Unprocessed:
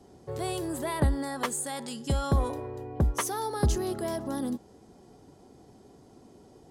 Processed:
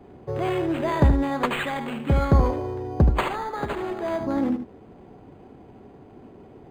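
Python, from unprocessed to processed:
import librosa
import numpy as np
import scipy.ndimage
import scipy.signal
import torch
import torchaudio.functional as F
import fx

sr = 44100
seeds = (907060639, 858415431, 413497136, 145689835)

p1 = fx.highpass(x, sr, hz=fx.line((3.26, 1200.0), (4.19, 460.0)), slope=6, at=(3.26, 4.19), fade=0.02)
p2 = p1 + fx.echo_single(p1, sr, ms=76, db=-8.0, dry=0)
p3 = np.interp(np.arange(len(p2)), np.arange(len(p2))[::8], p2[::8])
y = F.gain(torch.from_numpy(p3), 7.0).numpy()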